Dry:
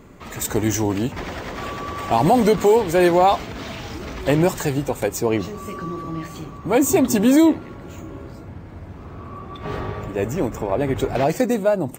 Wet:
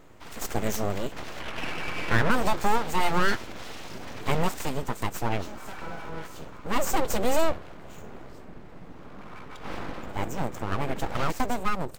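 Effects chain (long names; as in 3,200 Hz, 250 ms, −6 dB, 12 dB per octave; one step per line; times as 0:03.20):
0:01.40–0:02.31: low-pass with resonance 1,500 Hz, resonance Q 4.6
full-wave rectification
level −5 dB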